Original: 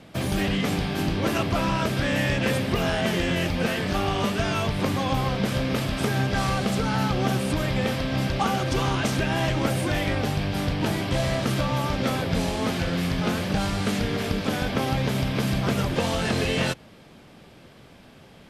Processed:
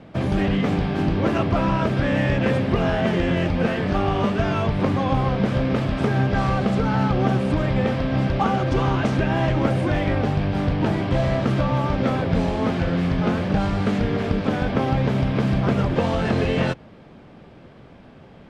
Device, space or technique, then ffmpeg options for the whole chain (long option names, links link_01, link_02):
through cloth: -af "lowpass=8300,highshelf=frequency=3100:gain=-17,volume=4.5dB"